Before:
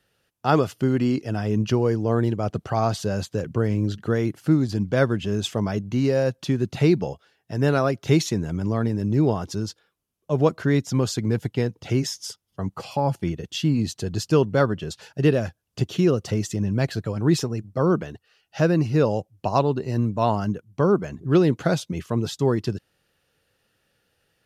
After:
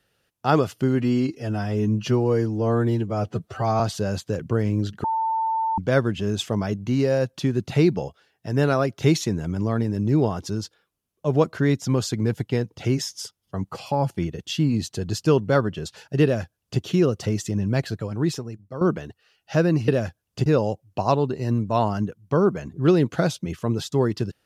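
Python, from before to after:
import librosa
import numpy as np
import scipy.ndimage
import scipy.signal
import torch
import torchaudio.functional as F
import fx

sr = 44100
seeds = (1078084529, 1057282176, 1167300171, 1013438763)

y = fx.edit(x, sr, fx.stretch_span(start_s=0.95, length_s=1.9, factor=1.5),
    fx.bleep(start_s=4.09, length_s=0.74, hz=894.0, db=-20.5),
    fx.duplicate(start_s=15.28, length_s=0.58, to_s=18.93),
    fx.fade_out_to(start_s=16.81, length_s=1.05, floor_db=-12.5), tone=tone)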